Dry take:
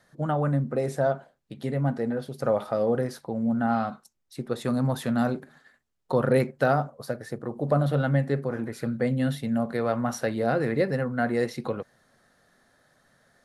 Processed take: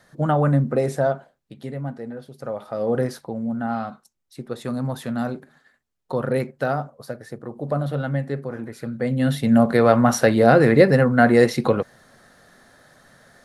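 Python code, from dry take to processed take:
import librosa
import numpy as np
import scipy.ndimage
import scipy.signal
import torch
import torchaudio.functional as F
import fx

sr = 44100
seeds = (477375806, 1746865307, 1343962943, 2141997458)

y = fx.gain(x, sr, db=fx.line((0.73, 6.5), (1.99, -5.5), (2.61, -5.5), (3.03, 5.5), (3.47, -1.0), (8.91, -1.0), (9.55, 11.0)))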